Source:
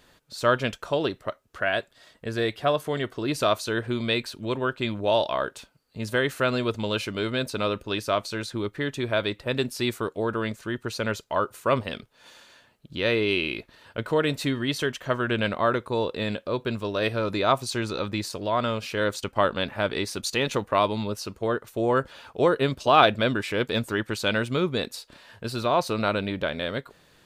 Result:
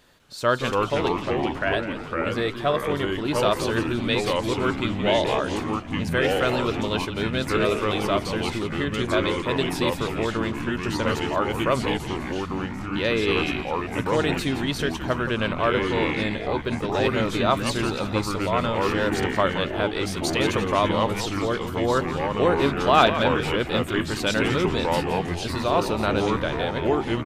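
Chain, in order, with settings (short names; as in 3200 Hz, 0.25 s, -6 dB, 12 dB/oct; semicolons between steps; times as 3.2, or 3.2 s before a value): frequency-shifting echo 0.17 s, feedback 47%, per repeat -110 Hz, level -10.5 dB; echoes that change speed 0.2 s, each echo -3 st, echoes 3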